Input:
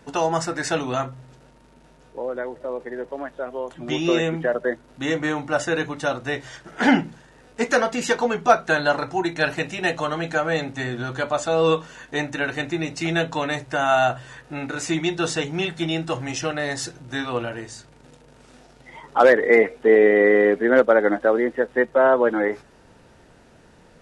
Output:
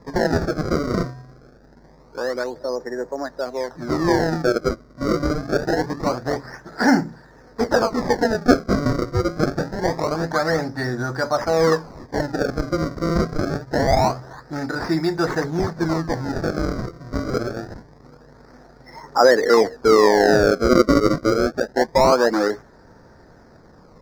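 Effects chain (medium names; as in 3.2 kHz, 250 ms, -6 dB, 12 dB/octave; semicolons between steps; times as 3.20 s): in parallel at -3 dB: peak limiter -15.5 dBFS, peak gain reduction 11 dB; on the sum: decimation with a swept rate 29×, swing 160% 0.25 Hz; FFT filter 1.8 kHz 0 dB, 2.9 kHz -23 dB, 5 kHz +2 dB, 8.4 kHz -17 dB; trim -1 dB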